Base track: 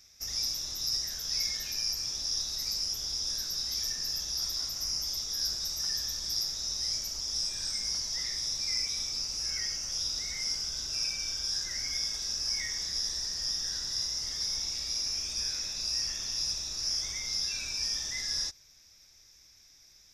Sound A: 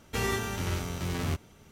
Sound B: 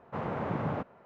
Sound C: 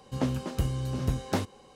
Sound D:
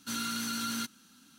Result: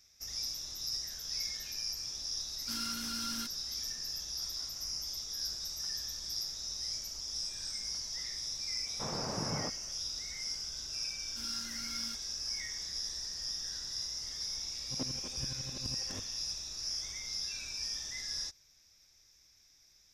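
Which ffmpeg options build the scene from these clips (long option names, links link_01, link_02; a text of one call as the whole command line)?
ffmpeg -i bed.wav -i cue0.wav -i cue1.wav -i cue2.wav -i cue3.wav -filter_complex "[4:a]asplit=2[link_01][link_02];[0:a]volume=-6dB[link_03];[3:a]aeval=exprs='val(0)*pow(10,-21*if(lt(mod(-12*n/s,1),2*abs(-12)/1000),1-mod(-12*n/s,1)/(2*abs(-12)/1000),(mod(-12*n/s,1)-2*abs(-12)/1000)/(1-2*abs(-12)/1000))/20)':channel_layout=same[link_04];[link_01]atrim=end=1.38,asetpts=PTS-STARTPTS,volume=-7dB,afade=type=in:duration=0.004:curve=hsin,afade=type=out:start_time=1.376:duration=0.004:curve=hsin,adelay=2610[link_05];[2:a]atrim=end=1.05,asetpts=PTS-STARTPTS,volume=-5.5dB,afade=type=in:duration=0.004:curve=hsin,afade=type=out:start_time=1.046:duration=0.004:curve=hsin,adelay=8870[link_06];[link_02]atrim=end=1.38,asetpts=PTS-STARTPTS,volume=-14dB,afade=type=in:duration=0.004:curve=hsin,afade=type=out:start_time=1.376:duration=0.004:curve=hsin,adelay=11290[link_07];[link_04]atrim=end=1.75,asetpts=PTS-STARTPTS,volume=-8dB,afade=type=in:duration=0.004:curve=hsin,afade=type=out:start_time=1.746:duration=0.004:curve=hsin,adelay=14780[link_08];[link_03][link_05][link_06][link_07][link_08]amix=inputs=5:normalize=0" out.wav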